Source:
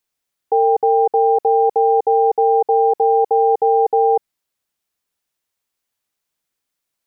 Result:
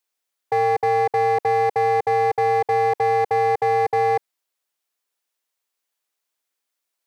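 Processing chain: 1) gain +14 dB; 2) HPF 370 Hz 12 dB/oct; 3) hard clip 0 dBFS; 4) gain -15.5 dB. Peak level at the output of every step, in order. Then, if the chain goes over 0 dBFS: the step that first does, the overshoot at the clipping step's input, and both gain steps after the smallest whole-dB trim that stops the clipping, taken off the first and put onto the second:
+6.5, +5.5, 0.0, -15.5 dBFS; step 1, 5.5 dB; step 1 +8 dB, step 4 -9.5 dB

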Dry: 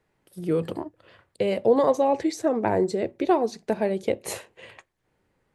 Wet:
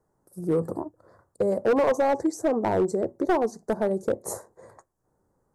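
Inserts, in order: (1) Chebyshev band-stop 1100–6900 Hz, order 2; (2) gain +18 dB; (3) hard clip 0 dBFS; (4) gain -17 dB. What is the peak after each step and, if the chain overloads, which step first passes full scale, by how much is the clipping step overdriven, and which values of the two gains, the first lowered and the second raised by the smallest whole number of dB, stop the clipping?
-8.5, +9.5, 0.0, -17.0 dBFS; step 2, 9.5 dB; step 2 +8 dB, step 4 -7 dB

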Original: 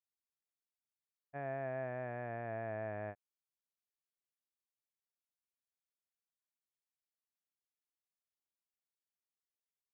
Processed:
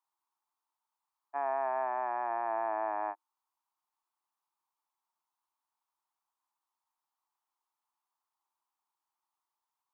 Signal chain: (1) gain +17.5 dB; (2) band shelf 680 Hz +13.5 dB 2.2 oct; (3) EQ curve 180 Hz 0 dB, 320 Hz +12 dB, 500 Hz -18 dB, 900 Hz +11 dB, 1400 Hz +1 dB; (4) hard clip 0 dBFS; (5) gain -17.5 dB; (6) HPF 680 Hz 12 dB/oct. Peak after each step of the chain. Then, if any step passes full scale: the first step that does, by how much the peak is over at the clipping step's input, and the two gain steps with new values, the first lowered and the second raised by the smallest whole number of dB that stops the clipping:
-12.5, -2.0, -2.0, -2.0, -19.5, -23.5 dBFS; no overload

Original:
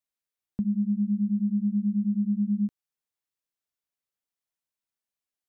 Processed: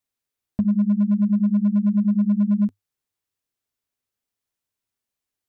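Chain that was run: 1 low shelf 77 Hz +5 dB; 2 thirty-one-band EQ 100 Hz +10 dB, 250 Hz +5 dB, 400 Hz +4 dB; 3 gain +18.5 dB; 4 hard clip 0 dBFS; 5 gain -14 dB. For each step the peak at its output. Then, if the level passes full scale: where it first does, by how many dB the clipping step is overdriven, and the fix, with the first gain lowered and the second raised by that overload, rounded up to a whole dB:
-18.0, -15.5, +3.0, 0.0, -14.0 dBFS; step 3, 3.0 dB; step 3 +15.5 dB, step 5 -11 dB

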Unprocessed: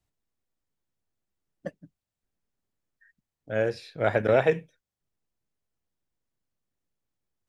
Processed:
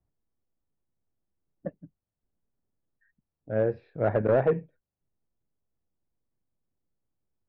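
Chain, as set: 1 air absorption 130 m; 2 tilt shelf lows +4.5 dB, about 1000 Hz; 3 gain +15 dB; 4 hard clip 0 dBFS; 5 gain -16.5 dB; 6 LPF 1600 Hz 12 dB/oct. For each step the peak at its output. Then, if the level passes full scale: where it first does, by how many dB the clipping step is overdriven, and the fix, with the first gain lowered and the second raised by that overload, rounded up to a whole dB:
-10.0, -8.0, +7.0, 0.0, -16.5, -16.0 dBFS; step 3, 7.0 dB; step 3 +8 dB, step 5 -9.5 dB

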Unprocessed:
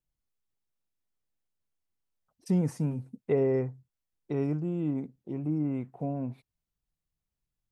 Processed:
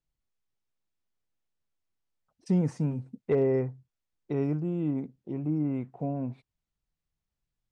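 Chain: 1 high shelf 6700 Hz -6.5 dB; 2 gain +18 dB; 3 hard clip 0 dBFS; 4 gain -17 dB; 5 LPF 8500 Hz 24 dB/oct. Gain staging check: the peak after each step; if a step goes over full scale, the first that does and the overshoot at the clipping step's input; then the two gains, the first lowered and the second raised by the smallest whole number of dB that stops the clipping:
-15.0, +3.0, 0.0, -17.0, -17.0 dBFS; step 2, 3.0 dB; step 2 +15 dB, step 4 -14 dB

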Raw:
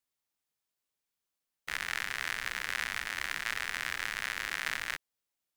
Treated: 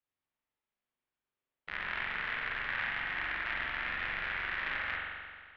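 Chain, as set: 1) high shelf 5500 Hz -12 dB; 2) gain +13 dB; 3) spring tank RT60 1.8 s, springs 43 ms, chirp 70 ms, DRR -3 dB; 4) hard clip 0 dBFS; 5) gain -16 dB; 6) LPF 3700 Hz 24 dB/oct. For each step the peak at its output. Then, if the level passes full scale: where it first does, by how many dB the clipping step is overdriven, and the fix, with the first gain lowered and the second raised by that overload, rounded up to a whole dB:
-18.5, -5.5, -3.5, -3.5, -19.5, -19.5 dBFS; no overload

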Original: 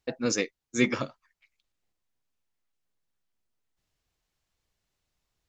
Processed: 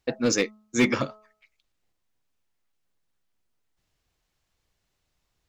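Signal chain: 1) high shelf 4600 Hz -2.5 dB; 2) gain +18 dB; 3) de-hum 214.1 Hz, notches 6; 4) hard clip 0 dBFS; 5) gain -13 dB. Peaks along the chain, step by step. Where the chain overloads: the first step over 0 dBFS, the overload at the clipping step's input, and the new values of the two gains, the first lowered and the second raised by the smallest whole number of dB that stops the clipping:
-10.0, +8.0, +8.0, 0.0, -13.0 dBFS; step 2, 8.0 dB; step 2 +10 dB, step 5 -5 dB

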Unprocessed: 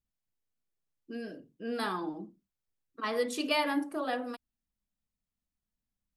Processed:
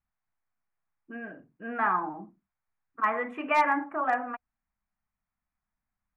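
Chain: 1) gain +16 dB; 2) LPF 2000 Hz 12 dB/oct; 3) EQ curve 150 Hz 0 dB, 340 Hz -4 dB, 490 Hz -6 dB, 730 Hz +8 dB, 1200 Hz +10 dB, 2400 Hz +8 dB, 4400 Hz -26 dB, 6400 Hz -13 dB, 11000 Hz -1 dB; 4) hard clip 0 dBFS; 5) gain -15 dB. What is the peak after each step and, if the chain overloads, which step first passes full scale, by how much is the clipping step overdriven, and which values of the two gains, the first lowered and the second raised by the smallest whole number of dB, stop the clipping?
-0.5, -3.0, +4.0, 0.0, -15.0 dBFS; step 3, 4.0 dB; step 1 +12 dB, step 5 -11 dB

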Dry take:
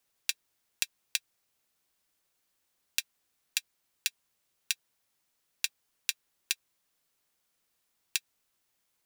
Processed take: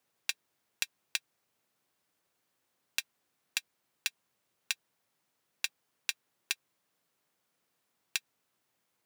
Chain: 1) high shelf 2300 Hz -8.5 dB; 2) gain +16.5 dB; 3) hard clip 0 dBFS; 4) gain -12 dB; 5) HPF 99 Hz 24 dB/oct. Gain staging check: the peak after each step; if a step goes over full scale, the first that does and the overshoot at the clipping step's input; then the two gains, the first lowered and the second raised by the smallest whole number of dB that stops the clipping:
-11.0, +5.5, 0.0, -12.0, -12.0 dBFS; step 2, 5.5 dB; step 2 +10.5 dB, step 4 -6 dB

